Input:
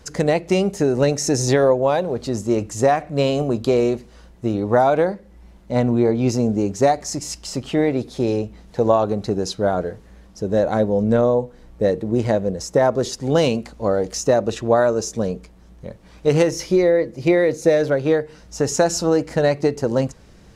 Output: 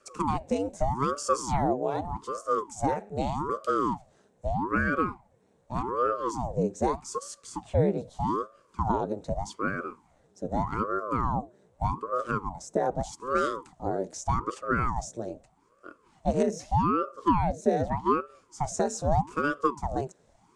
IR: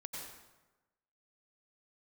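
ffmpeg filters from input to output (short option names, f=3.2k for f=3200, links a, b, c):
-af "highpass=f=270:w=0.5412,highpass=f=270:w=1.3066,equalizer=f=310:t=q:w=4:g=10,equalizer=f=1.1k:t=q:w=4:g=-8,equalizer=f=2.1k:t=q:w=4:g=-7,equalizer=f=3k:t=q:w=4:g=-8,equalizer=f=4.8k:t=q:w=4:g=-10,equalizer=f=8.1k:t=q:w=4:g=5,lowpass=f=9.4k:w=0.5412,lowpass=f=9.4k:w=1.3066,aeval=exprs='val(0)*sin(2*PI*490*n/s+490*0.8/0.82*sin(2*PI*0.82*n/s))':c=same,volume=-8dB"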